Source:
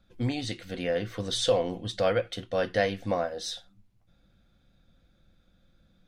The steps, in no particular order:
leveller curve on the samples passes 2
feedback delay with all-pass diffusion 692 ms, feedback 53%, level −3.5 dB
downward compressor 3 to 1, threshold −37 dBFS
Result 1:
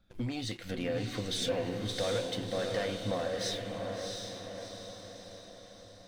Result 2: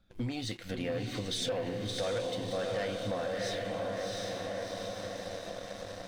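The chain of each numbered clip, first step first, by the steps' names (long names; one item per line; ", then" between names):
leveller curve on the samples, then downward compressor, then feedback delay with all-pass diffusion
feedback delay with all-pass diffusion, then leveller curve on the samples, then downward compressor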